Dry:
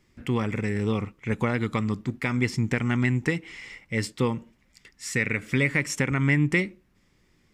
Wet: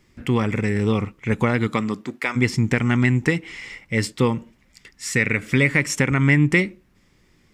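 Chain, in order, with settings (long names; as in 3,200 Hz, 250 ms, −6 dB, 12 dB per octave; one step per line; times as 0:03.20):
0:01.67–0:02.35: high-pass filter 130 Hz → 530 Hz 12 dB per octave
level +5.5 dB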